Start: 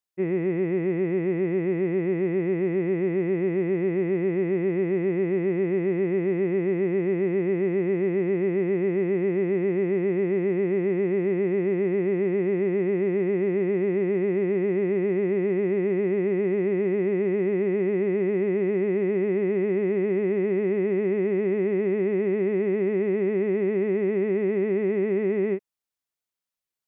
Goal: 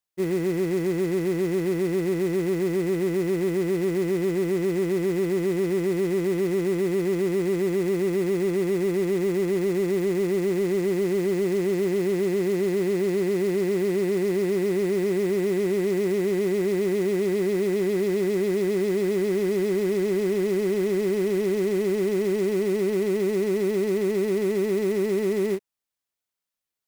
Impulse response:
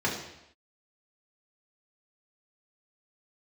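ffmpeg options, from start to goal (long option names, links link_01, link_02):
-af "acrusher=bits=4:mode=log:mix=0:aa=0.000001,aeval=exprs='0.141*(cos(1*acos(clip(val(0)/0.141,-1,1)))-cos(1*PI/2))+0.00398*(cos(5*acos(clip(val(0)/0.141,-1,1)))-cos(5*PI/2))':channel_layout=same"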